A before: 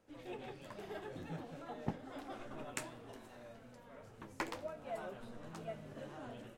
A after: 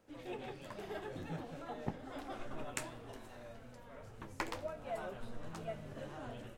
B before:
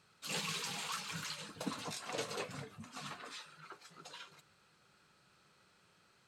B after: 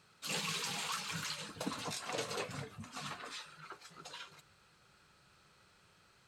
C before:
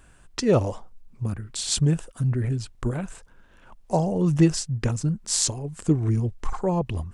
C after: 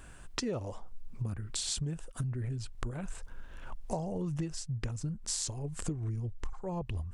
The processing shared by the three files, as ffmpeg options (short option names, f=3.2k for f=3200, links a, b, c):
-af "asubboost=boost=2.5:cutoff=110,acompressor=threshold=-35dB:ratio=10,volume=2.5dB"